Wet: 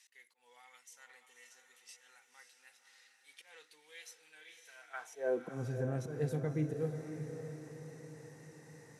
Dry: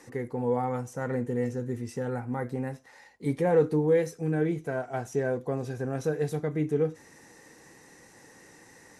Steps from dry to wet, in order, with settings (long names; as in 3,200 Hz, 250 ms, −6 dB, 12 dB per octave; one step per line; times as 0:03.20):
volume swells 129 ms
high-pass filter sweep 3,100 Hz → 110 Hz, 0:04.74–0:05.67
feedback delay with all-pass diffusion 564 ms, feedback 51%, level −8 dB
level −8.5 dB